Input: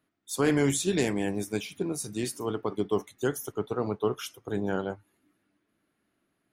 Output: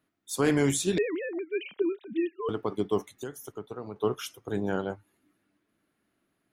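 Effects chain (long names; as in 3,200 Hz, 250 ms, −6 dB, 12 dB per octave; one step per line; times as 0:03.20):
0:00.98–0:02.49: three sine waves on the formant tracks
0:03.14–0:03.96: downward compressor 3 to 1, threshold −38 dBFS, peak gain reduction 12 dB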